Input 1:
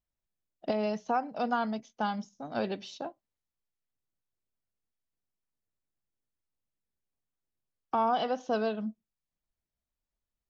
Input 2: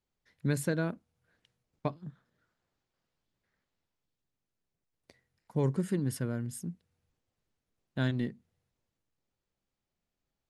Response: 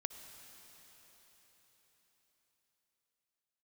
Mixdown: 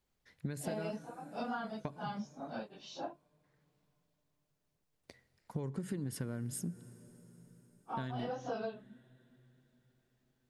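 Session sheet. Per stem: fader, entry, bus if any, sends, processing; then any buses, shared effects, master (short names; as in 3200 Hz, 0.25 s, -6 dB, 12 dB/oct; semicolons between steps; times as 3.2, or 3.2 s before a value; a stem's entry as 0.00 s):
-2.0 dB, 0.00 s, no send, phase scrambler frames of 0.1 s; beating tremolo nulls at 1.3 Hz
+1.5 dB, 0.00 s, send -8.5 dB, compressor, threshold -30 dBFS, peak gain reduction 7 dB; auto duck -7 dB, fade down 0.25 s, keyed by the first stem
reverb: on, RT60 4.8 s, pre-delay 53 ms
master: compressor 6:1, threshold -35 dBFS, peak gain reduction 10 dB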